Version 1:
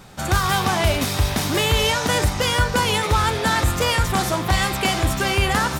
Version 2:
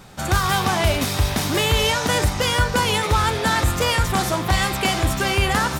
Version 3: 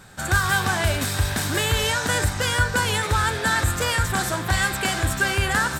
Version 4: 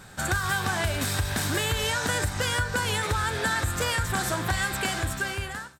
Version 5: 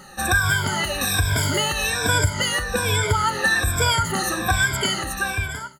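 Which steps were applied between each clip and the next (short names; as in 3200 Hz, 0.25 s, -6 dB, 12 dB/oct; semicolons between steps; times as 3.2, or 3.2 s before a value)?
nothing audible
thirty-one-band EQ 100 Hz +6 dB, 1600 Hz +11 dB, 4000 Hz +3 dB, 8000 Hz +9 dB, 12500 Hz +4 dB; gain -5 dB
ending faded out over 1.21 s; compressor, threshold -23 dBFS, peak gain reduction 8.5 dB
moving spectral ripple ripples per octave 1.7, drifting -1.2 Hz, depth 24 dB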